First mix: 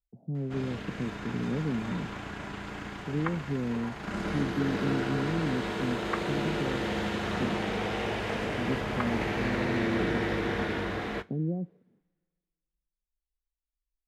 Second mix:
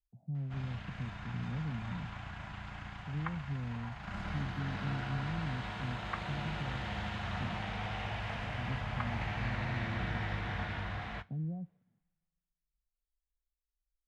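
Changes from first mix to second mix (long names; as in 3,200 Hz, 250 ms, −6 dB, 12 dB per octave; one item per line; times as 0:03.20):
background: add high-shelf EQ 2,600 Hz +11.5 dB
master: add drawn EQ curve 120 Hz 0 dB, 410 Hz −23 dB, 720 Hz −6 dB, 2,900 Hz −12 dB, 13,000 Hz −30 dB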